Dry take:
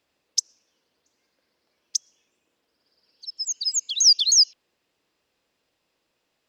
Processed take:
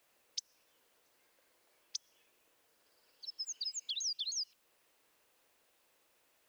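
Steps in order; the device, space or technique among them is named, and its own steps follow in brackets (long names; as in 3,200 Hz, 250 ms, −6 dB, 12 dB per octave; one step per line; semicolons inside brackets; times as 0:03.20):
baby monitor (band-pass filter 410–3,000 Hz; downward compressor, threshold −38 dBFS, peak gain reduction 15.5 dB; white noise bed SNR 28 dB)
level +1 dB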